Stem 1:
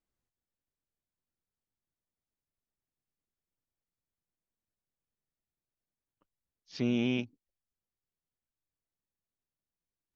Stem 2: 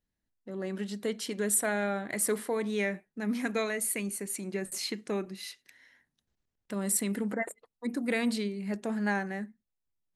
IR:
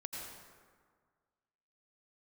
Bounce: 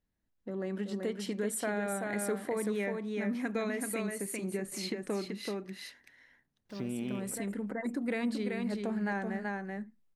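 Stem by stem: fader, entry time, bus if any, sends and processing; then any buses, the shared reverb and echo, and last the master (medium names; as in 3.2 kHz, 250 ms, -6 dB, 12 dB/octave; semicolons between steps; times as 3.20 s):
-6.5 dB, 0.00 s, send -9 dB, no echo send, send-on-delta sampling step -53.5 dBFS; endings held to a fixed fall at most 300 dB/s
+2.5 dB, 0.00 s, no send, echo send -5 dB, auto duck -15 dB, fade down 0.80 s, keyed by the first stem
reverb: on, RT60 1.7 s, pre-delay 78 ms
echo: delay 382 ms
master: level rider gain up to 4 dB; treble shelf 2.9 kHz -9 dB; compression 2:1, threshold -38 dBFS, peak gain reduction 11 dB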